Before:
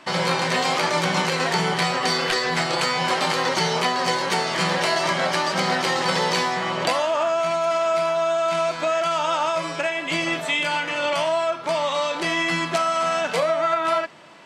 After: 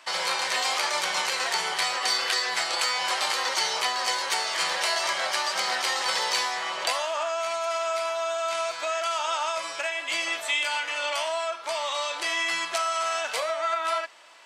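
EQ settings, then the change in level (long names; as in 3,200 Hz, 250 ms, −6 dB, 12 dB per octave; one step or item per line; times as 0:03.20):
high-pass filter 680 Hz 12 dB per octave
high-shelf EQ 4,100 Hz +8.5 dB
−5.0 dB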